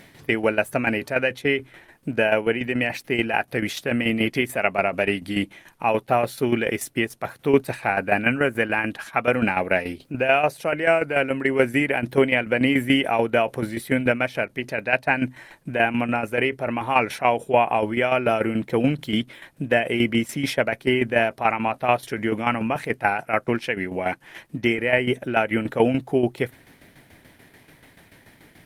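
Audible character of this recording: tremolo saw down 6.9 Hz, depth 65%; Opus

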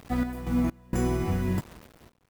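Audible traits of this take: a quantiser's noise floor 8-bit, dither none; random-step tremolo 4.3 Hz, depth 95%

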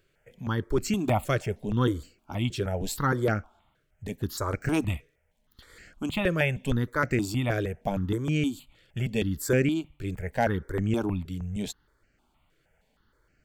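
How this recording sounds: notches that jump at a steady rate 6.4 Hz 230–3500 Hz

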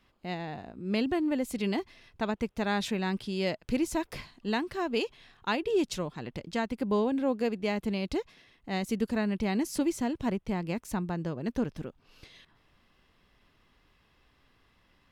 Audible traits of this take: noise floor -68 dBFS; spectral tilt -5.0 dB/oct

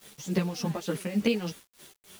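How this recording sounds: tremolo triangle 3.4 Hz, depth 80%; a quantiser's noise floor 8-bit, dither none; a shimmering, thickened sound

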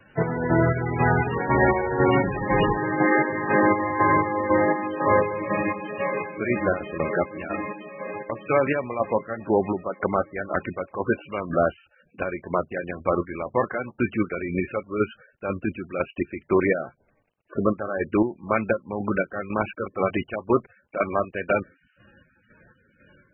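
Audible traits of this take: chopped level 2 Hz, depth 60%, duty 45%; a quantiser's noise floor 12-bit, dither none; MP3

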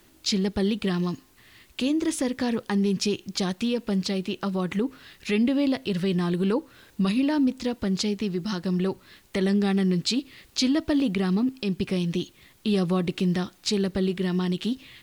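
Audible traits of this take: noise floor -58 dBFS; spectral tilt -5.5 dB/oct

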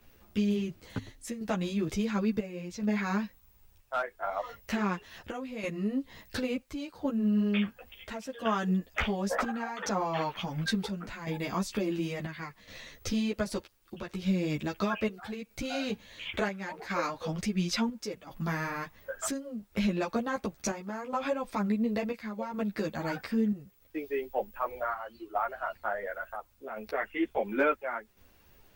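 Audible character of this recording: chopped level 0.71 Hz, depth 60%, duty 70%; a quantiser's noise floor 12-bit, dither triangular; a shimmering, thickened sound

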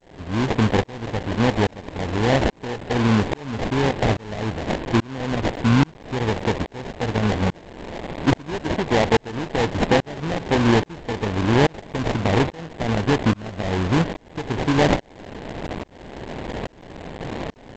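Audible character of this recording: a quantiser's noise floor 6-bit, dither triangular; tremolo saw up 1.2 Hz, depth 100%; aliases and images of a low sample rate 1300 Hz, jitter 20%; G.722

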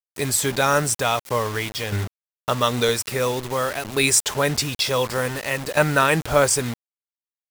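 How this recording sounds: tremolo saw down 0.52 Hz, depth 70%; a quantiser's noise floor 6-bit, dither none

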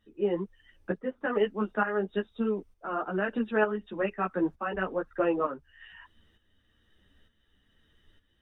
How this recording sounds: tremolo saw up 1.1 Hz, depth 65%; a shimmering, thickened sound

